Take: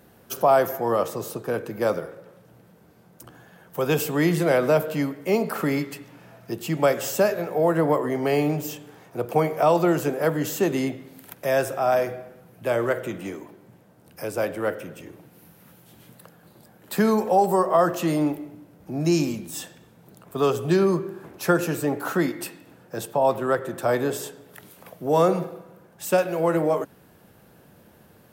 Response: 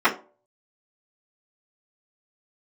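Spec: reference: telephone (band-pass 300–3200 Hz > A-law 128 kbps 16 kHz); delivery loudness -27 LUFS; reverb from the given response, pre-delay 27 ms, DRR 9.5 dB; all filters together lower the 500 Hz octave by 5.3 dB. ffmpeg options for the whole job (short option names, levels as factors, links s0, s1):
-filter_complex "[0:a]equalizer=f=500:t=o:g=-6,asplit=2[s0][s1];[1:a]atrim=start_sample=2205,adelay=27[s2];[s1][s2]afir=irnorm=-1:irlink=0,volume=0.0335[s3];[s0][s3]amix=inputs=2:normalize=0,highpass=300,lowpass=3200,volume=1.12" -ar 16000 -c:a pcm_alaw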